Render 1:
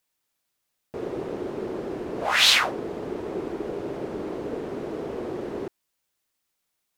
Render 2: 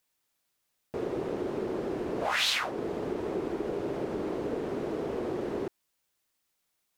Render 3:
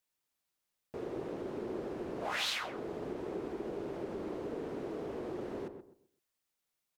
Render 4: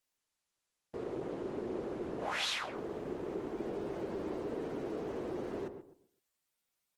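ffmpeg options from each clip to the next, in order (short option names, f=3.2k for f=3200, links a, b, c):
-af "acompressor=threshold=-28dB:ratio=3"
-filter_complex "[0:a]asplit=2[a][b];[b]adelay=128,lowpass=f=1.2k:p=1,volume=-7.5dB,asplit=2[c][d];[d]adelay=128,lowpass=f=1.2k:p=1,volume=0.29,asplit=2[e][f];[f]adelay=128,lowpass=f=1.2k:p=1,volume=0.29,asplit=2[g][h];[h]adelay=128,lowpass=f=1.2k:p=1,volume=0.29[i];[a][c][e][g][i]amix=inputs=5:normalize=0,volume=-7.5dB"
-af "volume=1dB" -ar 48000 -c:a libopus -b:a 16k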